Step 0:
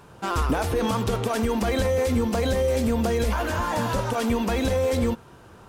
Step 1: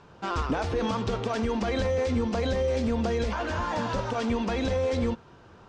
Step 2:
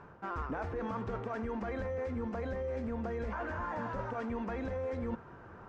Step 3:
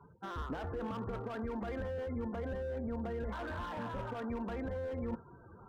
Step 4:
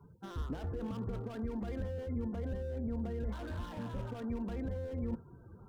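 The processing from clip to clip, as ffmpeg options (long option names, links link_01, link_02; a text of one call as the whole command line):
ffmpeg -i in.wav -af "lowpass=frequency=6100:width=0.5412,lowpass=frequency=6100:width=1.3066,bandreject=frequency=60:width_type=h:width=6,bandreject=frequency=120:width_type=h:width=6,volume=-3.5dB" out.wav
ffmpeg -i in.wav -af "highshelf=frequency=2500:width_type=q:width=1.5:gain=-12,areverse,acompressor=threshold=-36dB:ratio=4,areverse" out.wav
ffmpeg -i in.wav -filter_complex "[0:a]afftdn=noise_reduction=34:noise_floor=-47,acrossover=split=390[link_01][link_02];[link_02]asoftclip=type=hard:threshold=-39dB[link_03];[link_01][link_03]amix=inputs=2:normalize=0,volume=-1dB" out.wav
ffmpeg -i in.wav -af "equalizer=frequency=1200:width=0.39:gain=-12.5,volume=4.5dB" out.wav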